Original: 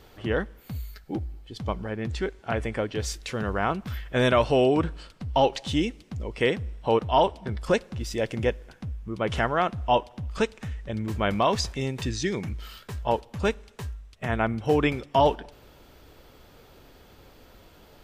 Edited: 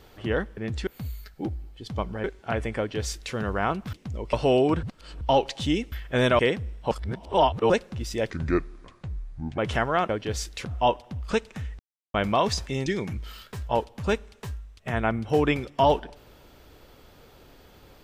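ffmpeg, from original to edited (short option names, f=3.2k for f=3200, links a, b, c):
-filter_complex "[0:a]asplit=19[a][b][c][d][e][f][g][h][i][j][k][l][m][n][o][p][q][r][s];[a]atrim=end=0.572[t];[b]atrim=start=1.938:end=2.242[u];[c]atrim=start=0.568:end=1.942[v];[d]atrim=start=2.238:end=3.932[w];[e]atrim=start=5.988:end=6.392[x];[f]atrim=start=4.398:end=4.902[y];[g]atrim=start=4.898:end=5.282,asetpts=PTS-STARTPTS,areverse[z];[h]atrim=start=5.278:end=5.992[aa];[i]atrim=start=3.928:end=4.402[ab];[j]atrim=start=6.388:end=6.912[ac];[k]atrim=start=6.908:end=7.702,asetpts=PTS-STARTPTS,areverse[ad];[l]atrim=start=7.698:end=8.304[ae];[m]atrim=start=8.3:end=9.21,asetpts=PTS-STARTPTS,asetrate=31311,aresample=44100[af];[n]atrim=start=9.206:end=9.722[ag];[o]atrim=start=2.778:end=3.342[ah];[p]atrim=start=9.718:end=10.86,asetpts=PTS-STARTPTS,afade=t=out:st=1.138:d=0.004:c=hsin[ai];[q]atrim=start=10.86:end=11.21,asetpts=PTS-STARTPTS,volume=0[aj];[r]atrim=start=11.21:end=11.932,asetpts=PTS-STARTPTS,afade=t=in:d=0.004:c=hsin[ak];[s]atrim=start=12.218[al];[t][u]acrossfade=d=0.004:c1=hsin:c2=hsin[am];[am][v]acrossfade=d=0.004:c1=hsin:c2=hsin[an];[an][w]acrossfade=d=0.004:c1=hsin:c2=hsin[ao];[ao][x]acrossfade=d=0.004:c1=hsin:c2=hsin[ap];[ap][y]acrossfade=d=0.004:c1=hsin:c2=hsin[aq];[aq][z]acrossfade=d=0.004:c1=hsin:c2=hsin[ar];[ar][aa]acrossfade=d=0.004:c1=hsin:c2=hsin[as];[as][ab]acrossfade=d=0.004:c1=hsin:c2=hsin[at];[at][ac]acrossfade=d=0.004:c1=hsin:c2=hsin[au];[au][ad]acrossfade=d=0.004:c1=hsin:c2=hsin[av];[av][ae]acrossfade=d=0.004:c1=hsin:c2=hsin[aw];[aw][af]acrossfade=d=0.004:c1=hsin:c2=hsin[ax];[ax][ag]acrossfade=d=0.004:c1=hsin:c2=hsin[ay];[ay][ah]acrossfade=d=0.004:c1=hsin:c2=hsin[az];[ai][aj][ak]concat=n=3:v=0:a=1[ba];[az][ba]acrossfade=d=0.004:c1=hsin:c2=hsin[bb];[bb][al]acrossfade=d=0.004:c1=hsin:c2=hsin"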